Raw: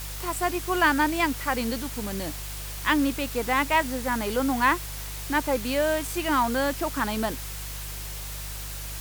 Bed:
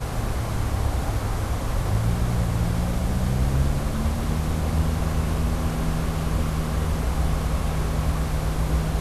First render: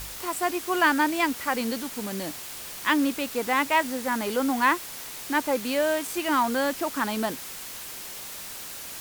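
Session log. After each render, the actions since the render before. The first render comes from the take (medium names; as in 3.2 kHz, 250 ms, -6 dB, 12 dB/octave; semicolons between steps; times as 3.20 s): de-hum 50 Hz, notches 3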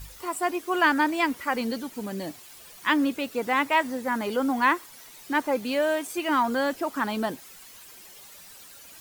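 noise reduction 12 dB, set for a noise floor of -39 dBFS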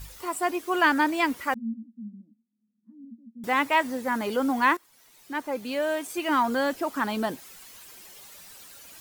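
1.54–3.44 s: Butterworth band-pass 220 Hz, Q 7.6; 4.77–6.34 s: fade in, from -16 dB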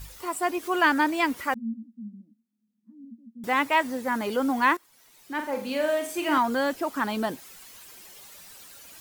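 0.58–1.50 s: upward compressor, threshold -32 dBFS; 5.34–6.38 s: flutter echo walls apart 7.4 m, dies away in 0.41 s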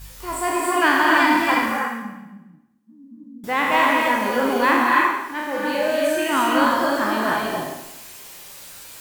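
spectral sustain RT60 0.95 s; gated-style reverb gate 330 ms rising, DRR -1.5 dB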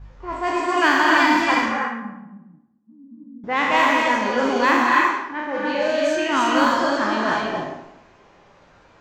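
level-controlled noise filter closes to 1 kHz, open at -13 dBFS; resonant high shelf 8 kHz -7.5 dB, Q 3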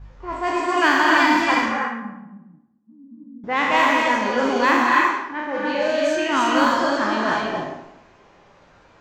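no audible change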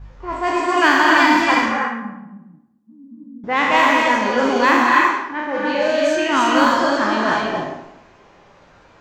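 trim +3 dB; peak limiter -2 dBFS, peak gain reduction 1 dB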